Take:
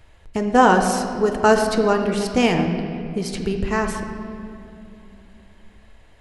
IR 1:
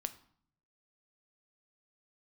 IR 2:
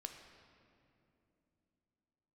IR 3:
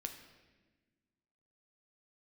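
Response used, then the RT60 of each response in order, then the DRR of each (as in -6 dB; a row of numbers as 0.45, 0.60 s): 2; 0.55, 2.9, 1.3 s; 10.0, 4.0, 4.5 dB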